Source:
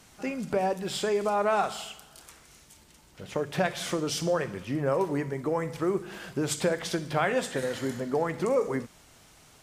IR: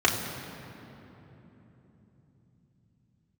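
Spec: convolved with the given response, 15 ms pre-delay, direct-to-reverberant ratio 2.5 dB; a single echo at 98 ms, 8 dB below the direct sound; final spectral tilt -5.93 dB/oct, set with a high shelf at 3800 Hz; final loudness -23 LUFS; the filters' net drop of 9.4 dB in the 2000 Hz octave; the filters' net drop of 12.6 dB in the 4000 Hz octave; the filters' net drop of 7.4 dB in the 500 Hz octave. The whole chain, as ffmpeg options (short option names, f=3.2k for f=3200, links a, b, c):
-filter_complex "[0:a]equalizer=f=500:t=o:g=-8.5,equalizer=f=2k:t=o:g=-8.5,highshelf=f=3.8k:g=-8,equalizer=f=4k:t=o:g=-8.5,aecho=1:1:98:0.398,asplit=2[a][b];[1:a]atrim=start_sample=2205,adelay=15[c];[b][c]afir=irnorm=-1:irlink=0,volume=-18.5dB[d];[a][d]amix=inputs=2:normalize=0,volume=9dB"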